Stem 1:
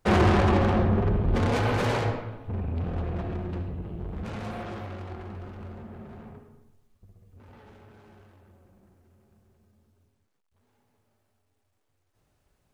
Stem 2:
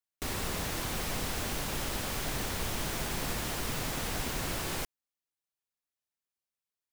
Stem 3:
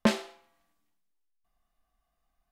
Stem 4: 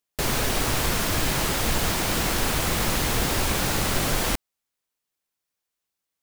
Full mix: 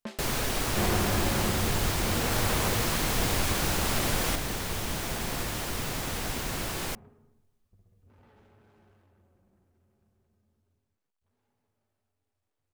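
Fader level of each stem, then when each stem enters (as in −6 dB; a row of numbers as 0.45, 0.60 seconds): −8.5, +1.5, −16.0, −5.0 decibels; 0.70, 2.10, 0.00, 0.00 seconds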